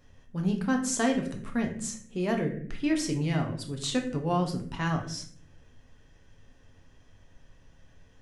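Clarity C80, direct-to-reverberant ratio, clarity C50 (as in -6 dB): 12.0 dB, 2.0 dB, 8.5 dB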